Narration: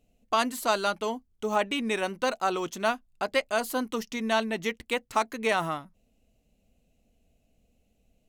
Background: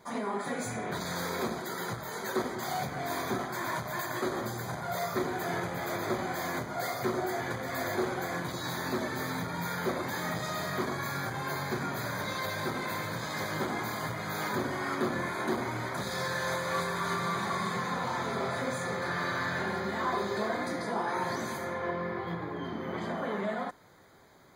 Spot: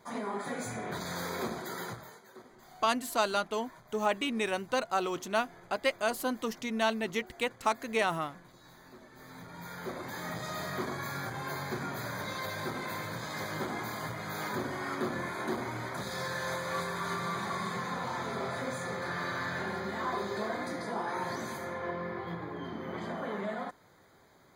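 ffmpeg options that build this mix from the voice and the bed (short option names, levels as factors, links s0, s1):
-filter_complex "[0:a]adelay=2500,volume=0.708[s0];[1:a]volume=5.96,afade=t=out:st=1.79:d=0.42:silence=0.11885,afade=t=in:st=9.11:d=1.49:silence=0.125893[s1];[s0][s1]amix=inputs=2:normalize=0"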